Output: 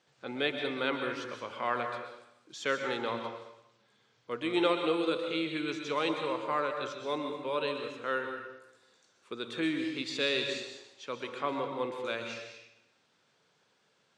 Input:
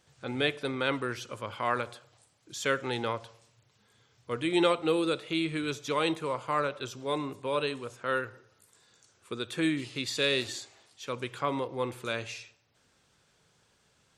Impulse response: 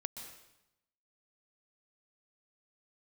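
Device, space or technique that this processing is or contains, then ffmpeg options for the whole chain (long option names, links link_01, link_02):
supermarket ceiling speaker: -filter_complex "[0:a]highpass=210,lowpass=5300[link_01];[1:a]atrim=start_sample=2205[link_02];[link_01][link_02]afir=irnorm=-1:irlink=0"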